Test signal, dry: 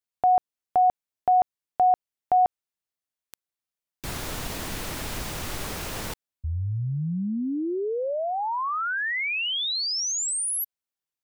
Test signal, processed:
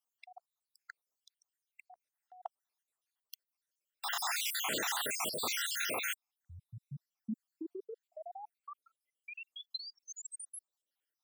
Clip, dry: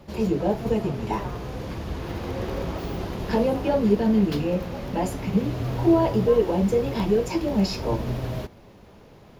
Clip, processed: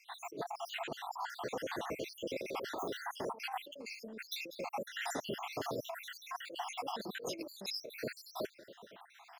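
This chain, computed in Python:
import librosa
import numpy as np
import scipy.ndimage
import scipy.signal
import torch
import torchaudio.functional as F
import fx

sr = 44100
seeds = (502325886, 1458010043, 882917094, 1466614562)

y = fx.spec_dropout(x, sr, seeds[0], share_pct=74)
y = scipy.signal.sosfilt(scipy.signal.butter(2, 420.0, 'highpass', fs=sr, output='sos'), y)
y = fx.over_compress(y, sr, threshold_db=-40.0, ratio=-1.0)
y = F.gain(torch.from_numpy(y), -1.0).numpy()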